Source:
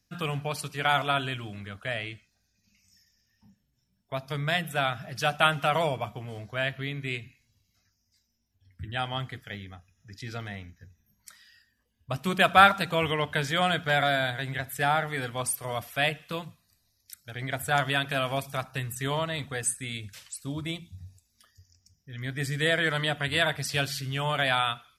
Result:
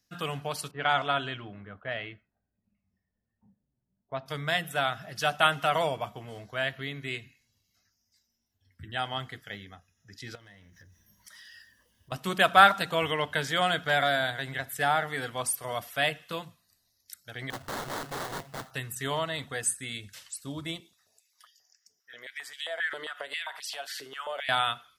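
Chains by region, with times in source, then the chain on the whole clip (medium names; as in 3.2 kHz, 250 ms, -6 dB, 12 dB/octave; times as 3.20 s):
0.71–4.26 s: level-controlled noise filter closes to 730 Hz, open at -22.5 dBFS + distance through air 87 m
10.35–12.12 s: companding laws mixed up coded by mu + rippled EQ curve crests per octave 1.2, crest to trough 6 dB + compression 16:1, threshold -46 dBFS
17.50–18.71 s: distance through air 340 m + sample-rate reducer 2.7 kHz, jitter 20% + integer overflow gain 28.5 dB
20.80–24.49 s: compression 8:1, threshold -35 dBFS + step-sequenced high-pass 7.5 Hz 400–3000 Hz
whole clip: bass shelf 180 Hz -9.5 dB; band-stop 2.4 kHz, Q 12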